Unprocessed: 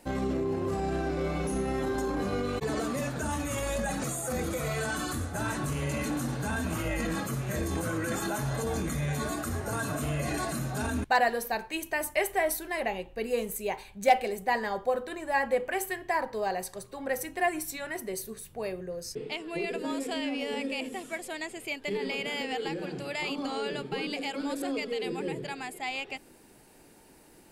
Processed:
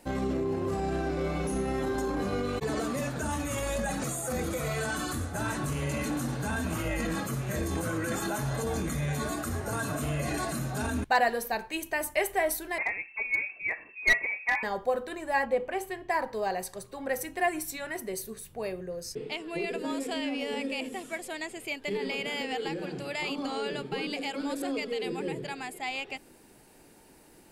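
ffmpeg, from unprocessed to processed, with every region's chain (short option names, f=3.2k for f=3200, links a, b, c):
-filter_complex "[0:a]asettb=1/sr,asplit=3[a][b][c];[a]atrim=end=12.784[d];[b]atrim=start=12.78:end=14.63,asetpts=PTS-STARTPTS,afade=t=in:d=0.004:c=qsin,afade=t=out:st=1.846:d=0.004:c=qsin,lowpass=f=2.3k:t=q:w=0.5098,lowpass=f=2.3k:t=q:w=0.6013,lowpass=f=2.3k:t=q:w=0.9,lowpass=f=2.3k:t=q:w=2.563,afreqshift=-2700,aeval=exprs='clip(val(0),-1,0.0891)':c=same[e];[c]atrim=start=14.626[f];[d][e]acrossfade=d=0.004:c1=hsin:c2=qsin[g];[g][f]acrossfade=d=0.004:c1=qsin:c2=hsin,asettb=1/sr,asplit=3[h][i][j];[h]atrim=end=15.454[k];[i]atrim=start=15.45:end=16.1,asetpts=PTS-STARTPTS,afade=t=in:d=0.004:c=qsin,afade=t=out:st=0.646:d=0.004:c=qsin,lowpass=f=3.2k:p=1,equalizer=f=1.7k:w=2.3:g=-5.5[l];[j]atrim=start=16.096[m];[k][l]acrossfade=d=0.004:c1=hsin:c2=qsin[n];[n][m]acrossfade=d=0.004:c1=qsin:c2=hsin"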